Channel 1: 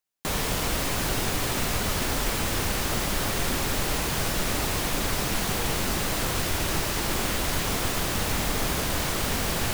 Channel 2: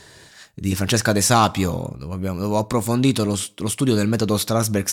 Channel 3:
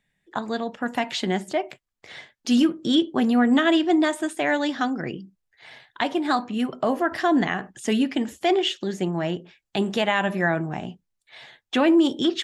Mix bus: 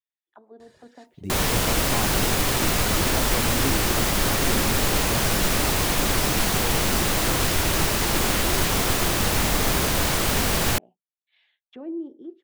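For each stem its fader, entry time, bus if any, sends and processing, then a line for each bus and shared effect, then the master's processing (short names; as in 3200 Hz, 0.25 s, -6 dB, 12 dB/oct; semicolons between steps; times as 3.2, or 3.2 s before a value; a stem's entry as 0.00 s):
-0.5 dB, 1.05 s, no send, modulation noise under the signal 13 dB
-16.5 dB, 0.60 s, no send, reverb removal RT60 0.74 s; de-esser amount 85%; high shelf 5000 Hz -5.5 dB
-17.5 dB, 0.00 s, no send, high shelf 2100 Hz -6 dB; auto-wah 380–3500 Hz, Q 2.3, down, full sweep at -25 dBFS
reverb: off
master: AGC gain up to 5 dB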